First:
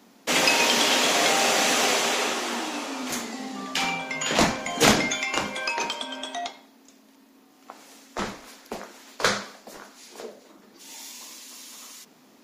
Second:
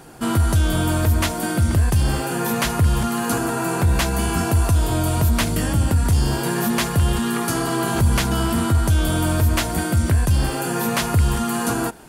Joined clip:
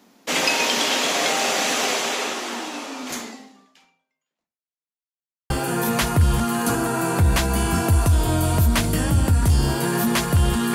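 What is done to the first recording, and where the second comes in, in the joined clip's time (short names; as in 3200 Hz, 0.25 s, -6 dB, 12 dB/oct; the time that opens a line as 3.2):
first
3.28–4.98 fade out exponential
4.98–5.5 mute
5.5 switch to second from 2.13 s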